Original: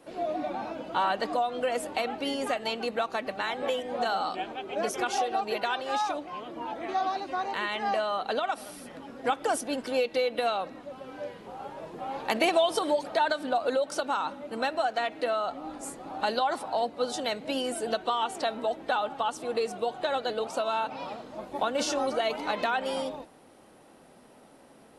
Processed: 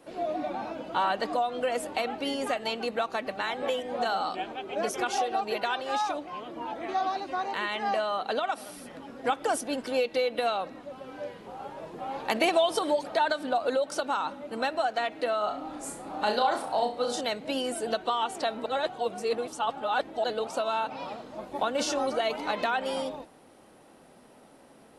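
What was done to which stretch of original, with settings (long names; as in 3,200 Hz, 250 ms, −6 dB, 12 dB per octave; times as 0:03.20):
0:07.39–0:08.75: high-pass filter 86 Hz
0:15.38–0:17.21: flutter between parallel walls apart 5.7 metres, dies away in 0.35 s
0:18.66–0:20.24: reverse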